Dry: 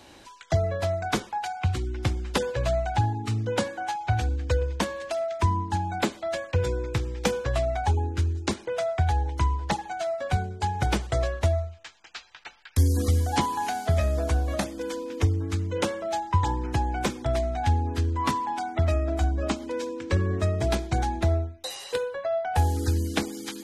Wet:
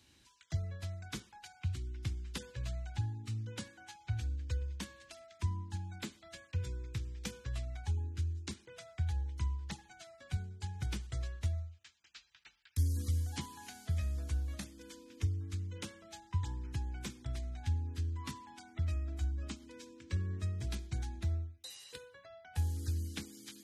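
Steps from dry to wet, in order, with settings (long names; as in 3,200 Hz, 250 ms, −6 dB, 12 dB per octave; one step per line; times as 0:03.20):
high-pass filter 49 Hz
guitar amp tone stack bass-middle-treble 6-0-2
level +3 dB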